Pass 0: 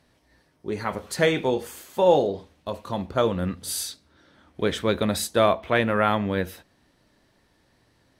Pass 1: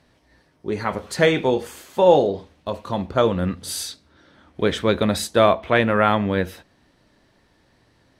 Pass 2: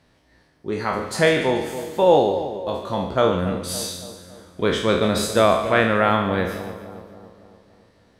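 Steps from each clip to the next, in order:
treble shelf 10 kHz -10 dB; trim +4 dB
spectral sustain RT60 0.63 s; two-band feedback delay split 1 kHz, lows 281 ms, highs 145 ms, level -11.5 dB; trim -2 dB

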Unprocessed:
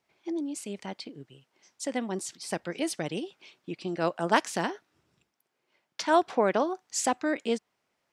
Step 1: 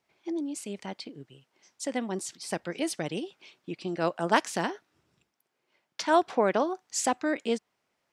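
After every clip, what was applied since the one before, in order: no audible change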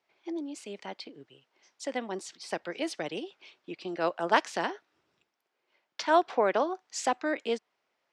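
three-band isolator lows -12 dB, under 300 Hz, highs -15 dB, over 6.1 kHz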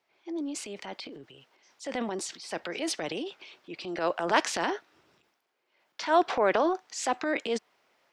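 transient shaper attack -5 dB, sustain +8 dB; trim +2 dB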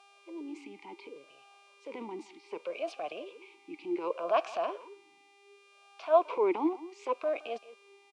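mains buzz 400 Hz, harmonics 26, -49 dBFS 0 dB/octave; speakerphone echo 170 ms, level -16 dB; talking filter a-u 0.67 Hz; trim +5.5 dB

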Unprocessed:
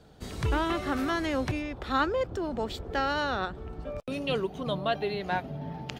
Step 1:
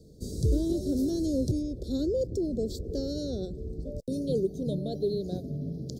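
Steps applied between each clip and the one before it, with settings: inverse Chebyshev band-stop 830–2900 Hz, stop band 40 dB; trim +3.5 dB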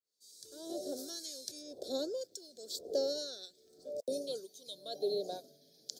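fade-in on the opening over 1.32 s; LFO high-pass sine 0.92 Hz 690–2200 Hz; trim +3 dB

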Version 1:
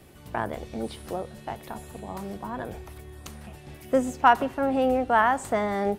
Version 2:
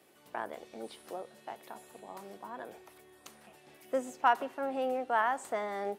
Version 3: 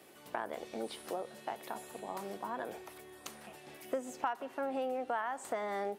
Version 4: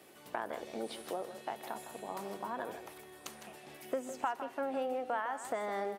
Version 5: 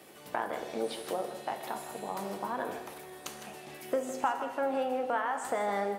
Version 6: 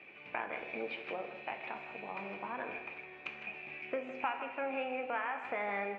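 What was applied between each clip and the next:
high-pass 340 Hz 12 dB/octave; trim -8 dB
compression 5:1, threshold -39 dBFS, peak gain reduction 17 dB; trim +5.5 dB
delay 158 ms -11 dB
reverberation, pre-delay 3 ms, DRR 6 dB; trim +4 dB
four-pole ladder low-pass 2.5 kHz, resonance 90%; trim +6 dB

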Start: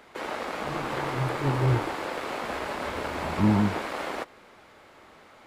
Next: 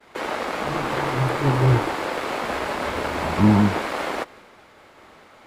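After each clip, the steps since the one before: expander -49 dBFS; trim +6 dB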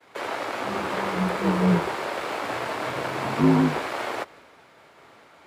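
frequency shift +55 Hz; trim -3 dB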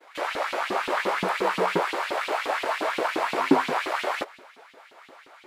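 LFO high-pass saw up 5.7 Hz 260–3600 Hz

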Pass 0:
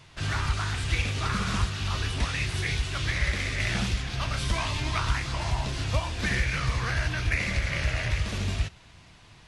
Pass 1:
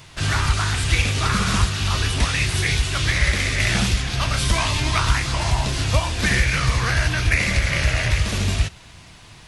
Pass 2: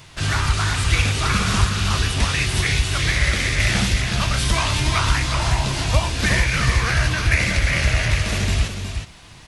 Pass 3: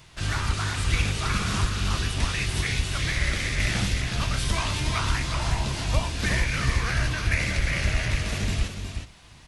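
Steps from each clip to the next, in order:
treble shelf 8.4 kHz +10.5 dB; trim +7.5 dB
delay 365 ms -7 dB
octave divider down 1 oct, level -4 dB; trim -7 dB

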